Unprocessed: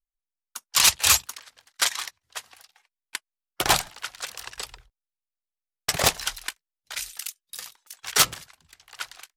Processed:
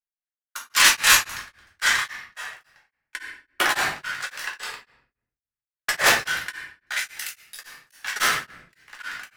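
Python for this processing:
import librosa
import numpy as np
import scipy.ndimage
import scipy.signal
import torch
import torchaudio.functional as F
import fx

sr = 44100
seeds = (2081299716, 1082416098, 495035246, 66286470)

y = fx.highpass(x, sr, hz=230.0, slope=6)
y = fx.peak_eq(y, sr, hz=1700.0, db=14.0, octaves=1.0)
y = fx.leveller(y, sr, passes=2)
y = fx.room_shoebox(y, sr, seeds[0], volume_m3=110.0, walls='mixed', distance_m=1.4)
y = y * np.abs(np.cos(np.pi * 3.6 * np.arange(len(y)) / sr))
y = y * librosa.db_to_amplitude(-10.0)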